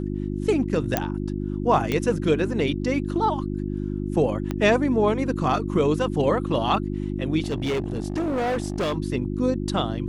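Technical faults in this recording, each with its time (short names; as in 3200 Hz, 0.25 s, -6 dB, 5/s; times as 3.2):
hum 50 Hz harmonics 7 -28 dBFS
0.97 pop -6 dBFS
1.92 pop -11 dBFS
4.51 pop -14 dBFS
7.42–8.98 clipped -21.5 dBFS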